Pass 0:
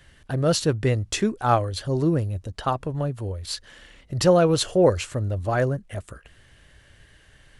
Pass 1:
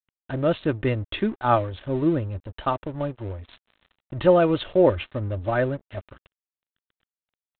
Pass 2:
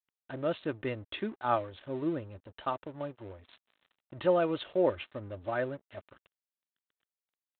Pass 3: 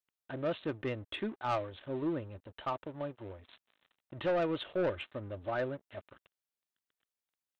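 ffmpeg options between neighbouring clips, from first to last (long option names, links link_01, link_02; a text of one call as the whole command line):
ffmpeg -i in.wav -af "aecho=1:1:3.3:0.41,aresample=8000,aeval=exprs='sgn(val(0))*max(abs(val(0))-0.00841,0)':channel_layout=same,aresample=44100" out.wav
ffmpeg -i in.wav -af "highpass=frequency=270:poles=1,volume=-8dB" out.wav
ffmpeg -i in.wav -af "asoftclip=type=tanh:threshold=-26dB" out.wav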